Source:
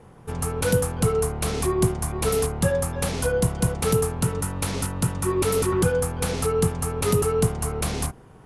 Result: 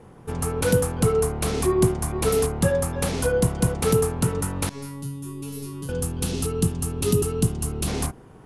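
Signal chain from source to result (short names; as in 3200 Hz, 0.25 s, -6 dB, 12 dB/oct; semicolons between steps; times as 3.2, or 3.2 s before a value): bell 300 Hz +4 dB 1.1 oct; 5.01–7.88 spectral gain 420–2500 Hz -9 dB; 4.69–5.89 resonator 140 Hz, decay 0.39 s, harmonics all, mix 100%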